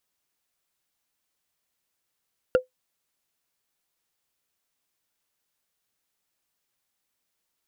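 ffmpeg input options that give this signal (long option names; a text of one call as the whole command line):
ffmpeg -f lavfi -i "aevalsrc='0.282*pow(10,-3*t/0.13)*sin(2*PI*509*t)+0.112*pow(10,-3*t/0.038)*sin(2*PI*1403.3*t)+0.0447*pow(10,-3*t/0.017)*sin(2*PI*2750.6*t)+0.0178*pow(10,-3*t/0.009)*sin(2*PI*4546.9*t)+0.00708*pow(10,-3*t/0.006)*sin(2*PI*6790.1*t)':duration=0.45:sample_rate=44100" out.wav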